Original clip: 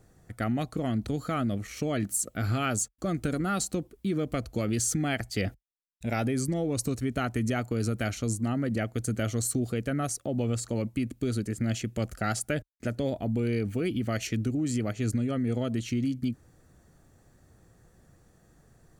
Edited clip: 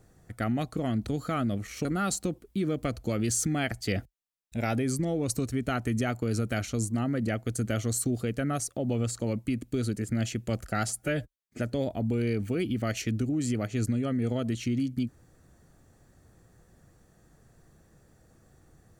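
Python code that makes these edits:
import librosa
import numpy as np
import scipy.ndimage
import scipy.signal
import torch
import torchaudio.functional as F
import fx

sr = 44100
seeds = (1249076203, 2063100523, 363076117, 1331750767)

y = fx.edit(x, sr, fx.cut(start_s=1.85, length_s=1.49),
    fx.stretch_span(start_s=12.38, length_s=0.47, factor=1.5), tone=tone)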